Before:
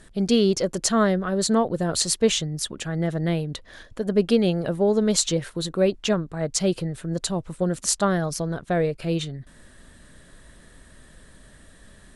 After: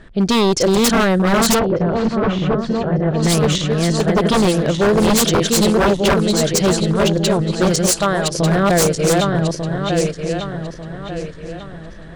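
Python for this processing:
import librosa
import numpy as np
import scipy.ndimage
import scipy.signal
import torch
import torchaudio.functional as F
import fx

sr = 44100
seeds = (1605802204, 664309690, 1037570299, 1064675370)

y = fx.reverse_delay_fb(x, sr, ms=597, feedback_pct=60, wet_db=-2.0)
y = fx.env_lowpass(y, sr, base_hz=2800.0, full_db=-14.5)
y = fx.peak_eq(y, sr, hz=210.0, db=-8.0, octaves=2.2, at=(7.86, 8.39))
y = 10.0 ** (-16.5 / 20.0) * (np.abs((y / 10.0 ** (-16.5 / 20.0) + 3.0) % 4.0 - 2.0) - 1.0)
y = fx.spacing_loss(y, sr, db_at_10k=43, at=(1.58, 3.22), fade=0.02)
y = y * 10.0 ** (8.0 / 20.0)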